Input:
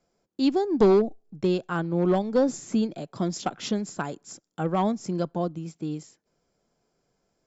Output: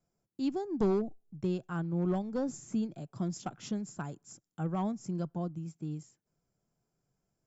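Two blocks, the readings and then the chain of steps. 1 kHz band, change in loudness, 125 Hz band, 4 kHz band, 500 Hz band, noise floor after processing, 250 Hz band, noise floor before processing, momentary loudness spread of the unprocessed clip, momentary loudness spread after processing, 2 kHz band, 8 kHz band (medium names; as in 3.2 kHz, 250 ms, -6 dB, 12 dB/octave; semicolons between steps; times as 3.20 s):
-11.0 dB, -9.0 dB, -4.5 dB, -13.5 dB, -11.5 dB, -85 dBFS, -7.5 dB, -76 dBFS, 13 LU, 10 LU, -11.5 dB, no reading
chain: graphic EQ 125/250/500/1000/2000/4000 Hz +6/-3/-7/-3/-5/-9 dB; trim -5.5 dB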